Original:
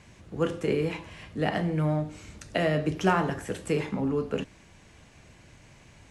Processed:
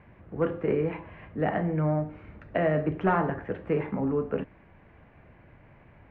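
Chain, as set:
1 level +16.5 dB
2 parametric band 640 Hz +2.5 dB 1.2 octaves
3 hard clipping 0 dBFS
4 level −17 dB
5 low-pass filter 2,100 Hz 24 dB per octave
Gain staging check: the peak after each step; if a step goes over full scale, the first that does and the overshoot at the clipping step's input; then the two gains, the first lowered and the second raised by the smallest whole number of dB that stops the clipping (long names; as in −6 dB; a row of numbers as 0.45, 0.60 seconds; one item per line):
+6.5, +7.5, 0.0, −17.0, −15.5 dBFS
step 1, 7.5 dB
step 1 +8.5 dB, step 4 −9 dB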